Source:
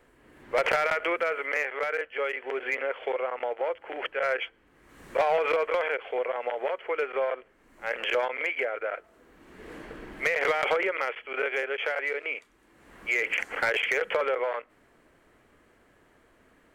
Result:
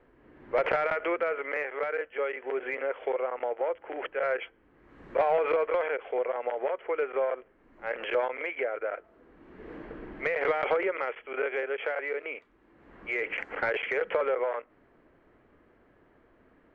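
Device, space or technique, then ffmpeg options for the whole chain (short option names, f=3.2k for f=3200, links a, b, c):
phone in a pocket: -af "lowpass=3.3k,equalizer=f=330:t=o:w=0.77:g=2,highshelf=f=2.1k:g=-9.5"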